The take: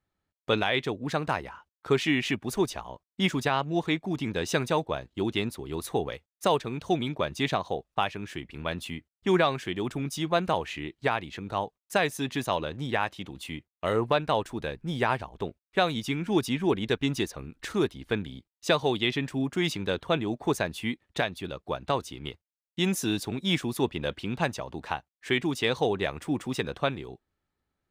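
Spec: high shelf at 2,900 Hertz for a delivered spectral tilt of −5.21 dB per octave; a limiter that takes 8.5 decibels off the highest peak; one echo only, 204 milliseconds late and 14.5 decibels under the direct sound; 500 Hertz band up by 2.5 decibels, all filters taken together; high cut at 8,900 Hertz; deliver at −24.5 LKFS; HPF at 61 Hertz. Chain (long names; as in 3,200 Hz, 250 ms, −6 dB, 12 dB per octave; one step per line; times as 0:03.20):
high-pass filter 61 Hz
low-pass filter 8,900 Hz
parametric band 500 Hz +3.5 dB
high-shelf EQ 2,900 Hz −9 dB
brickwall limiter −18.5 dBFS
single-tap delay 204 ms −14.5 dB
level +7 dB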